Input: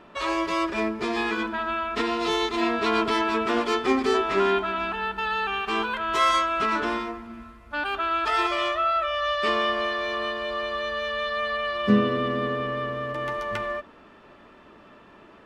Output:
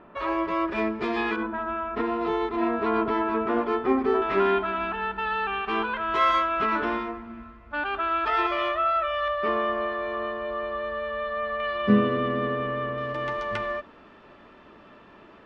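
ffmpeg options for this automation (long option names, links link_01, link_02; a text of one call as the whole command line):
ffmpeg -i in.wav -af "asetnsamples=nb_out_samples=441:pad=0,asendcmd='0.71 lowpass f 3100;1.36 lowpass f 1400;4.22 lowpass f 2600;9.28 lowpass f 1500;11.6 lowpass f 2700;12.98 lowpass f 5500',lowpass=1800" out.wav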